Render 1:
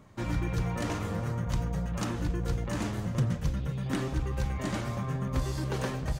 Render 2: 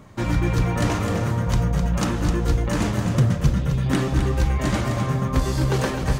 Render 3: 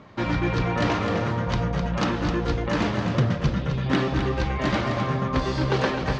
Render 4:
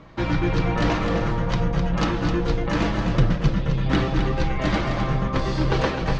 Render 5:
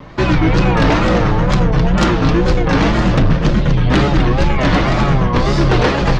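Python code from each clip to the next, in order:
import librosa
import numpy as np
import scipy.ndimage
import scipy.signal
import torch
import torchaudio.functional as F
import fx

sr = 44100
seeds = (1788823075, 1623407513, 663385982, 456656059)

y1 = x + 10.0 ** (-7.0 / 20.0) * np.pad(x, (int(257 * sr / 1000.0), 0))[:len(x)]
y1 = y1 * 10.0 ** (9.0 / 20.0)
y2 = scipy.signal.sosfilt(scipy.signal.butter(4, 4800.0, 'lowpass', fs=sr, output='sos'), y1)
y2 = fx.low_shelf(y2, sr, hz=140.0, db=-11.5)
y2 = y2 * 10.0 ** (2.0 / 20.0)
y3 = fx.octave_divider(y2, sr, octaves=2, level_db=0.0)
y3 = y3 + 0.38 * np.pad(y3, (int(6.1 * sr / 1000.0), 0))[:len(y3)]
y4 = fx.wow_flutter(y3, sr, seeds[0], rate_hz=2.1, depth_cents=140.0)
y4 = fx.fold_sine(y4, sr, drive_db=7, ceiling_db=-6.5)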